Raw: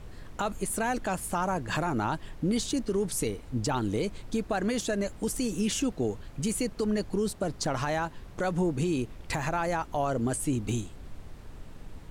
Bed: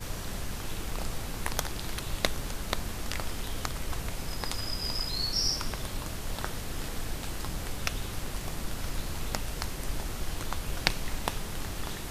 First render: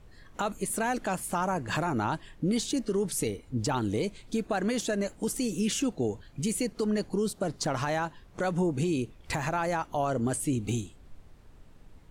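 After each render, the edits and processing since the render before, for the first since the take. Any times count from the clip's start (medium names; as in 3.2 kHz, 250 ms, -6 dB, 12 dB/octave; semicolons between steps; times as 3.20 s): noise print and reduce 9 dB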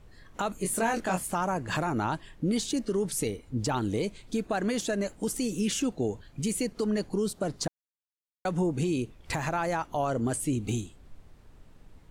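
0.62–1.27 s: doubling 22 ms -3 dB; 7.68–8.45 s: mute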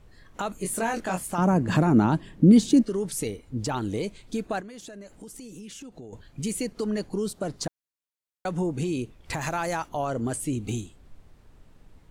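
1.38–2.83 s: peaking EQ 210 Hz +14 dB 2.2 oct; 4.60–6.13 s: compression, threshold -40 dBFS; 9.41–9.89 s: treble shelf 3.6 kHz +9 dB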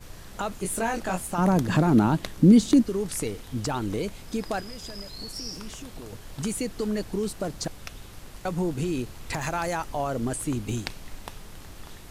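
add bed -8.5 dB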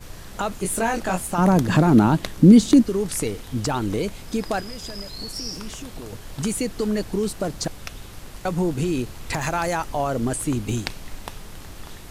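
trim +4.5 dB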